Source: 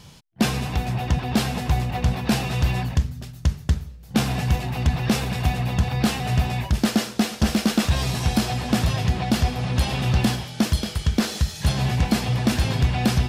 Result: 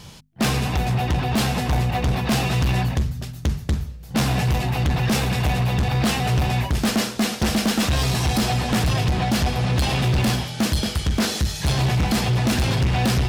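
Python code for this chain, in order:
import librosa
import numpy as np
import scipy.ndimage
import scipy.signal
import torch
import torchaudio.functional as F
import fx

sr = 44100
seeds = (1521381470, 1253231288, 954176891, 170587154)

y = fx.hum_notches(x, sr, base_hz=50, count=5)
y = np.clip(y, -10.0 ** (-21.5 / 20.0), 10.0 ** (-21.5 / 20.0))
y = y * librosa.db_to_amplitude(5.0)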